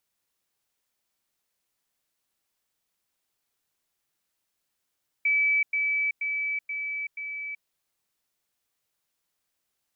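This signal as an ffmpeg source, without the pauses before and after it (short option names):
-f lavfi -i "aevalsrc='pow(10,(-20-3*floor(t/0.48))/20)*sin(2*PI*2300*t)*clip(min(mod(t,0.48),0.38-mod(t,0.48))/0.005,0,1)':d=2.4:s=44100"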